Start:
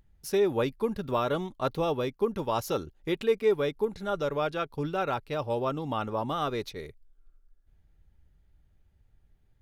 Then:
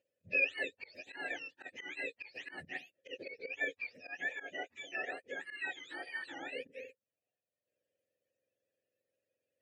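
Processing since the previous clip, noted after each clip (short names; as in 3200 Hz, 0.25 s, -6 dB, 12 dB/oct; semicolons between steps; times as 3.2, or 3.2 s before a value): spectrum mirrored in octaves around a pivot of 1000 Hz; auto swell 0.118 s; vowel filter e; gain +5.5 dB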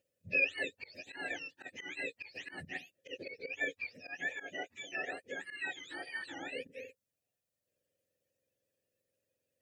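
tone controls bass +8 dB, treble +6 dB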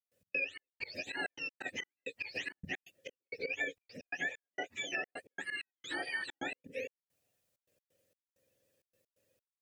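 compressor 5:1, threshold -42 dBFS, peak gain reduction 15 dB; step gate ".x.xx..xxxx" 131 bpm -60 dB; gain +8 dB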